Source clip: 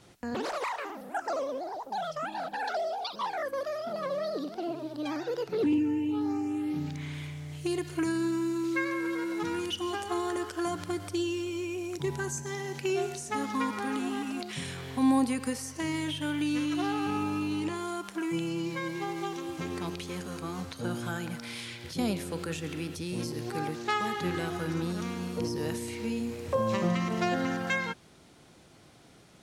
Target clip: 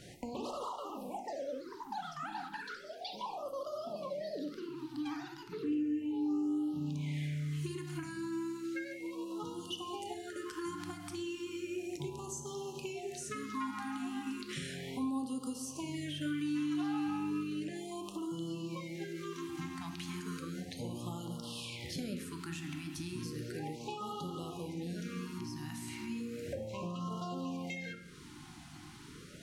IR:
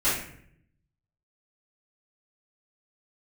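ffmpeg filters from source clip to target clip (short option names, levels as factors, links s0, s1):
-filter_complex "[0:a]acompressor=threshold=0.00562:ratio=4,asplit=2[s0][s1];[1:a]atrim=start_sample=2205[s2];[s1][s2]afir=irnorm=-1:irlink=0,volume=0.133[s3];[s0][s3]amix=inputs=2:normalize=0,afftfilt=real='re*(1-between(b*sr/1024,480*pow(2000/480,0.5+0.5*sin(2*PI*0.34*pts/sr))/1.41,480*pow(2000/480,0.5+0.5*sin(2*PI*0.34*pts/sr))*1.41))':imag='im*(1-between(b*sr/1024,480*pow(2000/480,0.5+0.5*sin(2*PI*0.34*pts/sr))/1.41,480*pow(2000/480,0.5+0.5*sin(2*PI*0.34*pts/sr))*1.41))':win_size=1024:overlap=0.75,volume=1.5"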